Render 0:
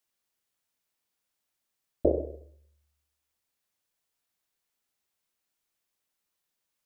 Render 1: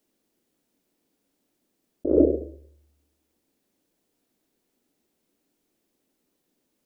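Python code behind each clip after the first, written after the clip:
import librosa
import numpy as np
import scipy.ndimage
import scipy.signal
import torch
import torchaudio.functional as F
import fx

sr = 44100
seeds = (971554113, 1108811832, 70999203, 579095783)

y = fx.curve_eq(x, sr, hz=(120.0, 280.0, 1100.0), db=(0, 14, -8))
y = fx.over_compress(y, sr, threshold_db=-26.0, ratio=-1.0)
y = fx.peak_eq(y, sr, hz=92.0, db=-2.5, octaves=0.77)
y = y * 10.0 ** (6.5 / 20.0)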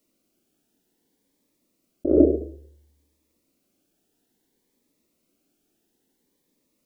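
y = fx.notch_cascade(x, sr, direction='rising', hz=0.59)
y = y * 10.0 ** (3.0 / 20.0)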